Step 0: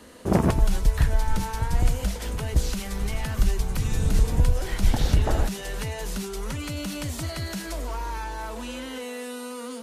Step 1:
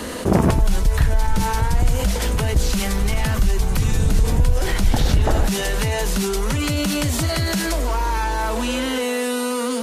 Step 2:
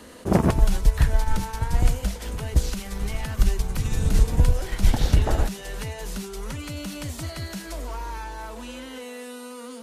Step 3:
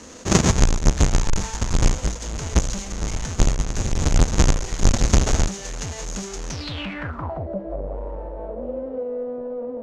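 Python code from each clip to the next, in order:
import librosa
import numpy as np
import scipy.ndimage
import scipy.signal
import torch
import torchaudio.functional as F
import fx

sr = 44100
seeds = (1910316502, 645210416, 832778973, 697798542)

y1 = fx.env_flatten(x, sr, amount_pct=50)
y1 = F.gain(torch.from_numpy(y1), 1.5).numpy()
y2 = fx.upward_expand(y1, sr, threshold_db=-23.0, expansion=2.5)
y2 = F.gain(torch.from_numpy(y2), 2.0).numpy()
y3 = fx.halfwave_hold(y2, sr)
y3 = fx.filter_sweep_lowpass(y3, sr, from_hz=6600.0, to_hz=570.0, start_s=6.48, end_s=7.48, q=6.9)
y3 = F.gain(torch.from_numpy(y3), -3.0).numpy()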